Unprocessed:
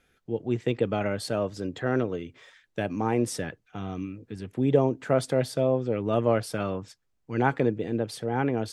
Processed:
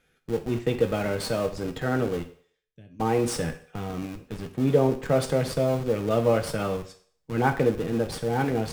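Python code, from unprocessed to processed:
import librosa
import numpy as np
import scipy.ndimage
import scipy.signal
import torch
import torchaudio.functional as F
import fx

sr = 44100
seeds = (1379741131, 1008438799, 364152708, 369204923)

p1 = fx.tone_stack(x, sr, knobs='10-0-1', at=(2.22, 2.99), fade=0.02)
p2 = fx.schmitt(p1, sr, flips_db=-34.5)
p3 = p1 + F.gain(torch.from_numpy(p2), -9.0).numpy()
p4 = fx.rev_fdn(p3, sr, rt60_s=0.53, lf_ratio=0.7, hf_ratio=1.0, size_ms=37.0, drr_db=5.0)
y = F.gain(torch.from_numpy(p4), -1.0).numpy()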